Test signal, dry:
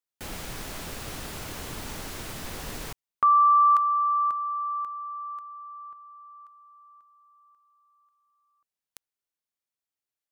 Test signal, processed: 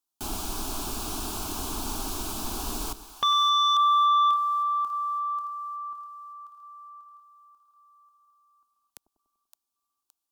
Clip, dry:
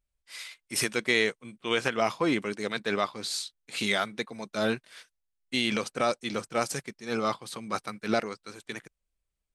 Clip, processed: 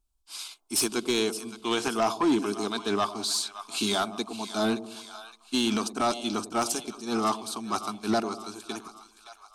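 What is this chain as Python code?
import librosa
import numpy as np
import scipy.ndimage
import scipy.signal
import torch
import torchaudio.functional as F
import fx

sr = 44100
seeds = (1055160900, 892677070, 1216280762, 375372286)

y = fx.fixed_phaser(x, sr, hz=520.0, stages=6)
y = fx.echo_split(y, sr, split_hz=760.0, low_ms=97, high_ms=567, feedback_pct=52, wet_db=-14)
y = fx.fold_sine(y, sr, drive_db=6, ceiling_db=-15.5)
y = y * librosa.db_to_amplitude(-3.0)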